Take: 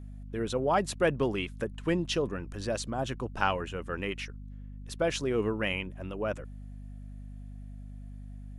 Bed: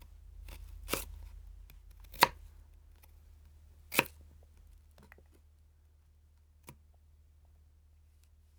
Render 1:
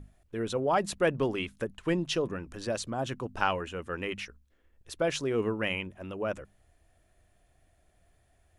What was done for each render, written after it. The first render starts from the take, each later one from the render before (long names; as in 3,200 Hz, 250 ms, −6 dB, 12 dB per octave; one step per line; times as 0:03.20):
mains-hum notches 50/100/150/200/250 Hz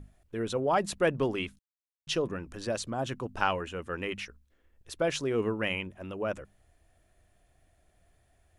0:01.59–0:02.07: silence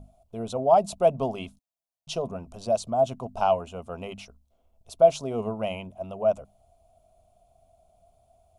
phaser with its sweep stopped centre 730 Hz, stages 4
hollow resonant body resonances 270/660 Hz, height 16 dB, ringing for 35 ms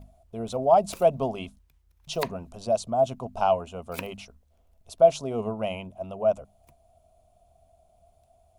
mix in bed −8.5 dB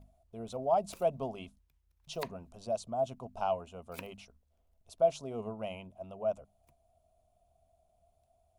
level −9.5 dB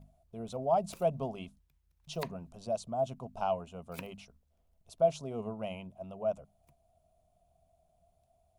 parametric band 160 Hz +8 dB 0.54 octaves